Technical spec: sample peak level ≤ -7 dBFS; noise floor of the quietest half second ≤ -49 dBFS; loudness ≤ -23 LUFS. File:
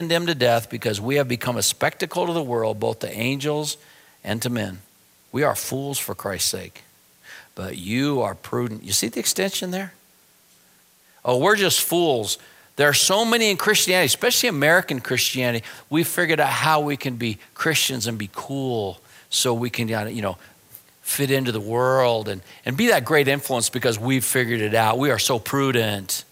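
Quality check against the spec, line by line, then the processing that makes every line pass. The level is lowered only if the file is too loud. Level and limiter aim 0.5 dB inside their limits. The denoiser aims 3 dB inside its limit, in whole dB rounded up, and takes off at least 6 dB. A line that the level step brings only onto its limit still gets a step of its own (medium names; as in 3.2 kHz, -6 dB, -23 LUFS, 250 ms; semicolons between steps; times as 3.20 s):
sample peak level -4.0 dBFS: fail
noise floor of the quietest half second -56 dBFS: pass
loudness -21.0 LUFS: fail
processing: trim -2.5 dB; peak limiter -7.5 dBFS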